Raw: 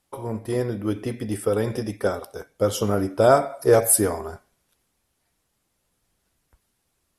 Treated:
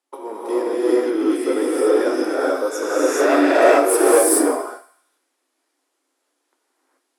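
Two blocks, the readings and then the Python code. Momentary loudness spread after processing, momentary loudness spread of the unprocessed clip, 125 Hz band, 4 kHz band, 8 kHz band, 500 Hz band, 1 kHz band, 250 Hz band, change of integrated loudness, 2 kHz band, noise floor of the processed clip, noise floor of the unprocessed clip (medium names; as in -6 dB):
11 LU, 15 LU, under -30 dB, +4.5 dB, +3.0 dB, +5.5 dB, +6.0 dB, +8.0 dB, +5.0 dB, +10.0 dB, -74 dBFS, -74 dBFS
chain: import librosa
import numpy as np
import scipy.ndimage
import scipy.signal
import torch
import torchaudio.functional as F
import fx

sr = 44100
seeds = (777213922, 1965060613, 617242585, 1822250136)

y = scipy.signal.sosfilt(scipy.signal.butter(4, 11000.0, 'lowpass', fs=sr, output='sos'), x)
y = 10.0 ** (-10.0 / 20.0) * (np.abs((y / 10.0 ** (-10.0 / 20.0) + 3.0) % 4.0 - 2.0) - 1.0)
y = fx.leveller(y, sr, passes=1)
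y = scipy.signal.sosfilt(scipy.signal.cheby1(6, 3, 260.0, 'highpass', fs=sr, output='sos'), y)
y = fx.echo_thinned(y, sr, ms=77, feedback_pct=56, hz=790.0, wet_db=-14.0)
y = fx.spec_repair(y, sr, seeds[0], start_s=2.41, length_s=0.82, low_hz=1400.0, high_hz=5300.0, source='both')
y = fx.low_shelf(y, sr, hz=350.0, db=4.5)
y = fx.rev_gated(y, sr, seeds[1], gate_ms=460, shape='rising', drr_db=-7.5)
y = F.gain(torch.from_numpy(y), -3.0).numpy()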